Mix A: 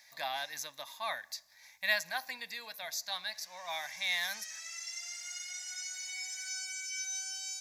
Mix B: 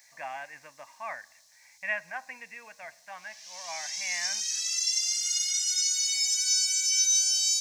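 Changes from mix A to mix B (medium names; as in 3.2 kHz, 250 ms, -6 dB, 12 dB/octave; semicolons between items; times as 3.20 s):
speech: add steep low-pass 2.8 kHz 72 dB/octave; background: add resonant high shelf 2.5 kHz +13.5 dB, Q 1.5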